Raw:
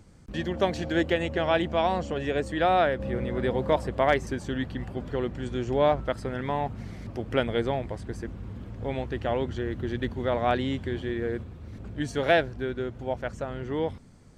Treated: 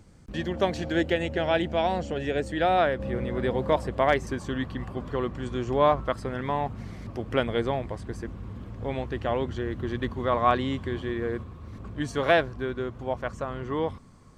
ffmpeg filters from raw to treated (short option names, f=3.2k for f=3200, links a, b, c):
-af "asetnsamples=n=441:p=0,asendcmd='0.95 equalizer g -8.5;2.78 equalizer g 3;4.28 equalizer g 13.5;6.15 equalizer g 7;9.82 equalizer g 14.5',equalizer=f=1.1k:t=o:w=0.23:g=0.5"